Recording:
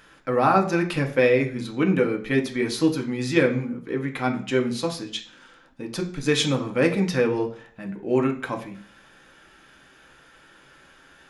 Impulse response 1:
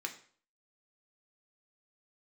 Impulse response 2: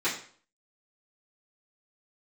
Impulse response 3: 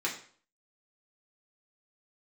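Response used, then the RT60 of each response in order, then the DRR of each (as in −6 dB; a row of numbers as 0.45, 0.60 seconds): 1; 0.50, 0.50, 0.50 seconds; 2.5, −12.0, −4.5 decibels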